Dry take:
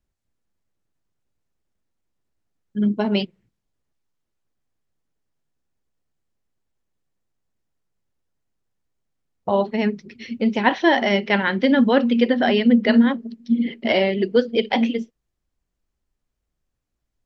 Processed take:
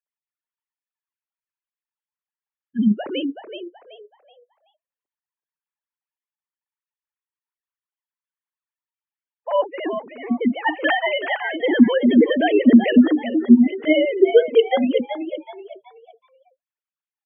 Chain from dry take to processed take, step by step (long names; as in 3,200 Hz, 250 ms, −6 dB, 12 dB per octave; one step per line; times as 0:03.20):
three sine waves on the formant tracks
echo with shifted repeats 378 ms, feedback 33%, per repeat +69 Hz, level −9 dB
gate on every frequency bin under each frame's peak −30 dB strong
level +1.5 dB